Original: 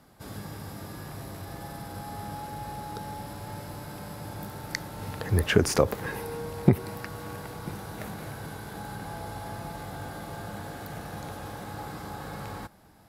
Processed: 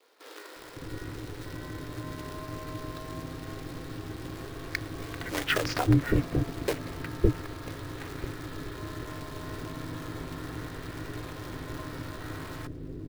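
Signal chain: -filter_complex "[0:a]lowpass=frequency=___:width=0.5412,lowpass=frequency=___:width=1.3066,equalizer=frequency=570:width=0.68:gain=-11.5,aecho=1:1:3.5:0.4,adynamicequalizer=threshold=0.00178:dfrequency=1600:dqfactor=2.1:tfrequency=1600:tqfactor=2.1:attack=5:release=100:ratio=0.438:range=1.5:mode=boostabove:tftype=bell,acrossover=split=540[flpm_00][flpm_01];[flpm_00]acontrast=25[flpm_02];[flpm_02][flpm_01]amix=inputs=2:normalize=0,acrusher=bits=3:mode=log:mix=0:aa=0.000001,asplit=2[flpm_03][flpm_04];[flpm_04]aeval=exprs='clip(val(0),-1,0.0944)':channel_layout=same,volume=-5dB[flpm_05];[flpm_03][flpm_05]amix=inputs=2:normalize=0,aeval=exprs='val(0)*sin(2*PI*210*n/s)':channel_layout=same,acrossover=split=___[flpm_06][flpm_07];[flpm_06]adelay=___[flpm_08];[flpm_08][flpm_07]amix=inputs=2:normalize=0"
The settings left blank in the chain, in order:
4600, 4600, 450, 560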